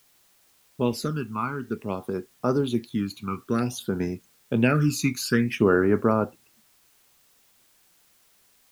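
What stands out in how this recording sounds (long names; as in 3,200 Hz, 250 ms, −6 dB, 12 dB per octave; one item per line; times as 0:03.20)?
phaser sweep stages 12, 0.54 Hz, lowest notch 540–3,400 Hz
a quantiser's noise floor 10 bits, dither triangular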